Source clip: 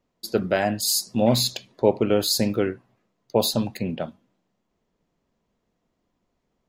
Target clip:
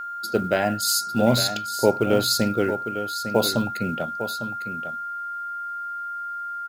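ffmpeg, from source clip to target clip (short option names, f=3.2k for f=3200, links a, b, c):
-af "aeval=exprs='val(0)+0.0316*sin(2*PI*1400*n/s)':c=same,aecho=1:1:853:0.316,acrusher=bits=8:mode=log:mix=0:aa=0.000001"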